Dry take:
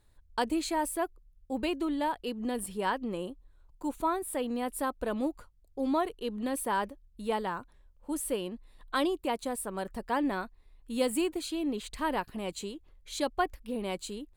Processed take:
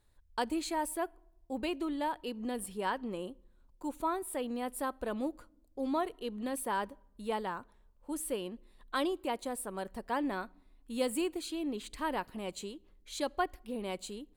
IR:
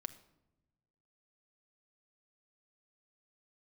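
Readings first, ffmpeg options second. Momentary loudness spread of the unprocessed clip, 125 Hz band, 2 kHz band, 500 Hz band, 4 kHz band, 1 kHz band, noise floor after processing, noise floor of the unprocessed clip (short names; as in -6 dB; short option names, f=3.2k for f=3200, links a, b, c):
9 LU, -4.5 dB, -3.5 dB, -3.5 dB, -3.5 dB, -3.5 dB, -65 dBFS, -62 dBFS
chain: -filter_complex "[0:a]asplit=2[a][b];[b]highpass=170[c];[1:a]atrim=start_sample=2205,asetrate=43218,aresample=44100[d];[c][d]afir=irnorm=-1:irlink=0,volume=-10dB[e];[a][e]amix=inputs=2:normalize=0,volume=-5dB"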